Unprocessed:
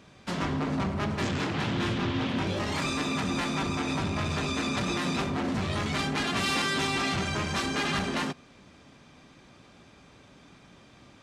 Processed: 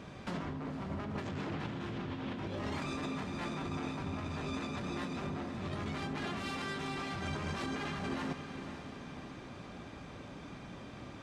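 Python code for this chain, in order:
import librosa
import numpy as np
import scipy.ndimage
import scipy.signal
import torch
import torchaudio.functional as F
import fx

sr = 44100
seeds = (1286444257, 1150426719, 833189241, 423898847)

y = fx.high_shelf(x, sr, hz=2600.0, db=-9.0)
y = fx.over_compress(y, sr, threshold_db=-38.0, ratio=-1.0)
y = fx.echo_diffused(y, sr, ms=518, feedback_pct=47, wet_db=-9.5)
y = F.gain(torch.from_numpy(y), -1.0).numpy()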